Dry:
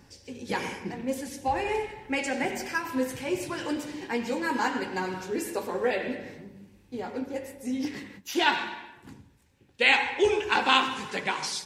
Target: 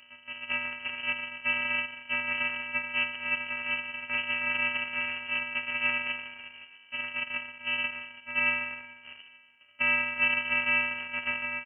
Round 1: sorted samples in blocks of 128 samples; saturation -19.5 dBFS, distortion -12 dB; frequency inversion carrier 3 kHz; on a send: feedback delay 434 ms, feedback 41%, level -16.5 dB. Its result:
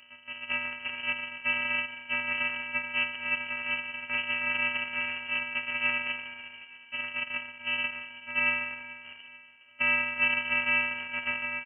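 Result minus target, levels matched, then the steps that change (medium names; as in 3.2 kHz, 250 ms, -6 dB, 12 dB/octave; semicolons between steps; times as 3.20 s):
echo-to-direct +6.5 dB
change: feedback delay 434 ms, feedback 41%, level -23 dB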